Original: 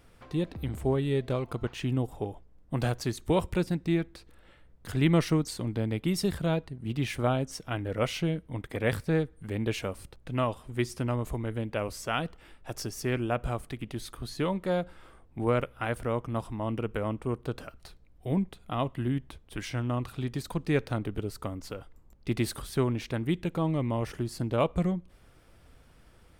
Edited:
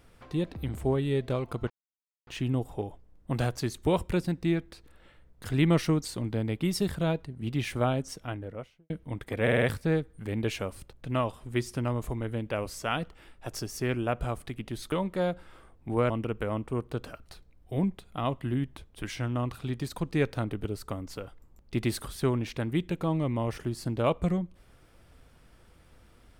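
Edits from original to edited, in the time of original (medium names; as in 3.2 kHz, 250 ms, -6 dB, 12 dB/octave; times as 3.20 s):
1.70 s: insert silence 0.57 s
7.45–8.33 s: studio fade out
8.85 s: stutter 0.05 s, 5 plays
14.15–14.42 s: delete
15.60–16.64 s: delete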